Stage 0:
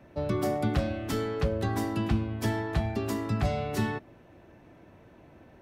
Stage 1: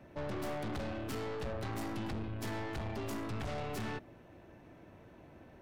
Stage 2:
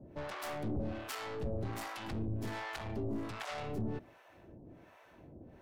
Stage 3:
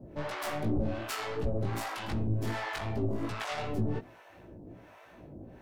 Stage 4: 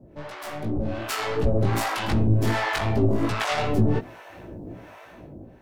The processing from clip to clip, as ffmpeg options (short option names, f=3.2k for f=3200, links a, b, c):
-af "aeval=exprs='(tanh(70.8*val(0)+0.5)-tanh(0.5))/70.8':c=same"
-filter_complex "[0:a]acrossover=split=620[a][b];[a]aeval=exprs='val(0)*(1-1/2+1/2*cos(2*PI*1.3*n/s))':c=same[c];[b]aeval=exprs='val(0)*(1-1/2-1/2*cos(2*PI*1.3*n/s))':c=same[d];[c][d]amix=inputs=2:normalize=0,volume=4.5dB"
-af "flanger=delay=16.5:depth=3.6:speed=2.7,volume=8.5dB"
-af "dynaudnorm=f=420:g=5:m=12dB,volume=-1.5dB"